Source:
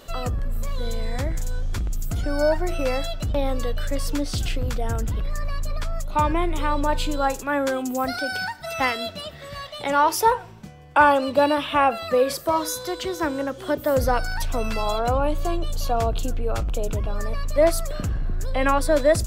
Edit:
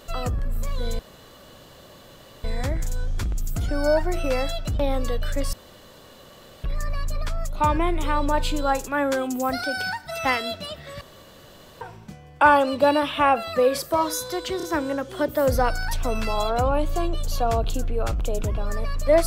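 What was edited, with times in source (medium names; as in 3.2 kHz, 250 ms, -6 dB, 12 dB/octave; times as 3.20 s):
0.99 s: insert room tone 1.45 s
4.08–5.19 s: room tone
9.56–10.36 s: room tone
13.12 s: stutter 0.03 s, 3 plays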